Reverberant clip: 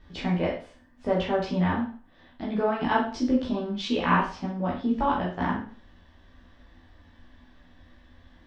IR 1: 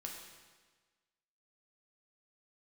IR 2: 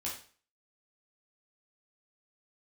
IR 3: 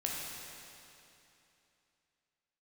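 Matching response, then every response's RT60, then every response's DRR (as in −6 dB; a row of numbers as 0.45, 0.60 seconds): 2; 1.4, 0.40, 2.9 seconds; −0.5, −5.5, −3.5 decibels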